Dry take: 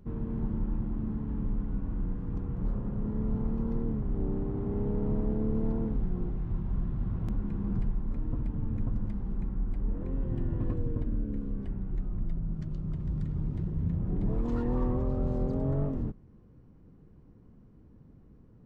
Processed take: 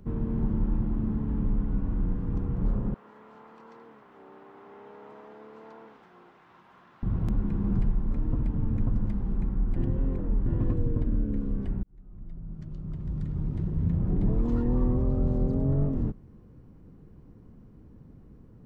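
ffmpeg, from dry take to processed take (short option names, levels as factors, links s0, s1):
-filter_complex "[0:a]asettb=1/sr,asplit=3[s0][s1][s2];[s0]atrim=end=2.944[s3];[s1]atrim=start=2.94:end=7.03,asetpts=PTS-STARTPTS,afade=t=in:d=0.004:c=qsin,afade=t=out:st=4.086:d=0.004:c=qsin,highpass=1100[s4];[s2]atrim=start=7.026[s5];[s3][s4]acrossfade=d=0.004:c1=hsin:c2=qsin[s6];[s6][s5]acrossfade=d=0.004:c1=qsin:c2=hsin,asplit=4[s7][s8][s9][s10];[s7]atrim=end=9.762[s11];[s8]atrim=start=9.758:end=10.462,asetpts=PTS-STARTPTS,areverse[s12];[s9]atrim=start=10.458:end=11.83,asetpts=PTS-STARTPTS,afade=t=out:st=1.368:d=0.004:c=hsin[s13];[s10]atrim=start=11.83,asetpts=PTS-STARTPTS,afade=t=in:d=2.21[s14];[s11][s12]acrossfade=d=0.004:c1=hsin:c2=hsin[s15];[s13][s14]concat=n=2:v=0:a=1[s16];[s15][s16]acrossfade=d=0.004:c1=hsin:c2=hsin,acrossover=split=380[s17][s18];[s18]acompressor=threshold=0.00631:ratio=6[s19];[s17][s19]amix=inputs=2:normalize=0,volume=1.68"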